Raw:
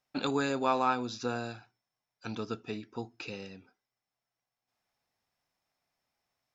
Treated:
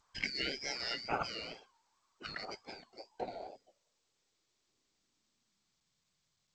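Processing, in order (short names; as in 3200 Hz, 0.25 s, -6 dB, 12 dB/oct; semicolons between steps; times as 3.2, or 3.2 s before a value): four-band scrambler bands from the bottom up 4321; wow and flutter 120 cents; low-pass sweep 1300 Hz -> 140 Hz, 2.32–6.31; gain +9.5 dB; G.722 64 kbps 16000 Hz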